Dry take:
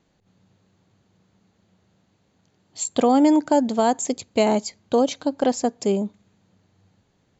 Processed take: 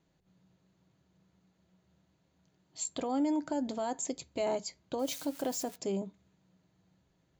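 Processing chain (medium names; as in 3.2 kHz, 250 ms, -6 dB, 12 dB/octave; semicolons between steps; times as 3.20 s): 4.99–5.76 s: zero-crossing glitches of -26.5 dBFS; peak limiter -16 dBFS, peak gain reduction 8.5 dB; on a send: reverberation RT60 0.10 s, pre-delay 3 ms, DRR 10 dB; on the sum: trim -9 dB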